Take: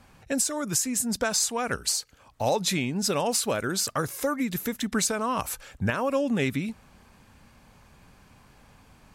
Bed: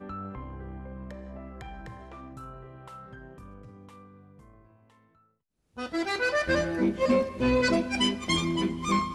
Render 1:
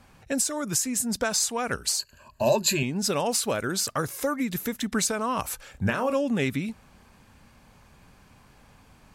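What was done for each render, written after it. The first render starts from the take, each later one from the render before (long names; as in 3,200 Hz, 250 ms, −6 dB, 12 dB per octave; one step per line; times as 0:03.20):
0:01.99–0:02.83: EQ curve with evenly spaced ripples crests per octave 1.4, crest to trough 16 dB
0:05.71–0:06.15: double-tracking delay 31 ms −7.5 dB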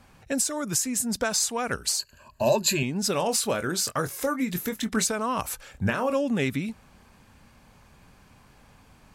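0:03.12–0:05.06: double-tracking delay 23 ms −10 dB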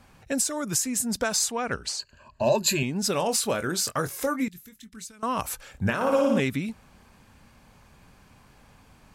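0:01.51–0:02.55: high-frequency loss of the air 79 metres
0:04.48–0:05.23: guitar amp tone stack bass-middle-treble 6-0-2
0:05.95–0:06.40: flutter between parallel walls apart 9.8 metres, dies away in 1.2 s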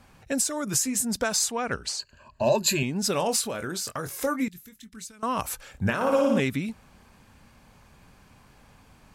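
0:00.65–0:01.05: double-tracking delay 15 ms −7.5 dB
0:03.41–0:04.10: downward compressor 4 to 1, threshold −28 dBFS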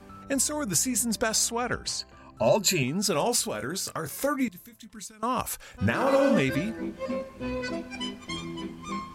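mix in bed −8.5 dB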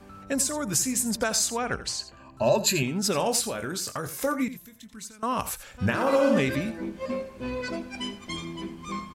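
single-tap delay 85 ms −14 dB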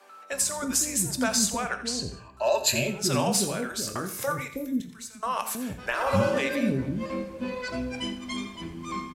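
multiband delay without the direct sound highs, lows 320 ms, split 450 Hz
reverb whose tail is shaped and stops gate 230 ms falling, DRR 8.5 dB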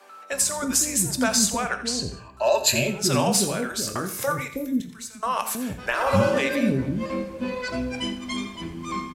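level +3.5 dB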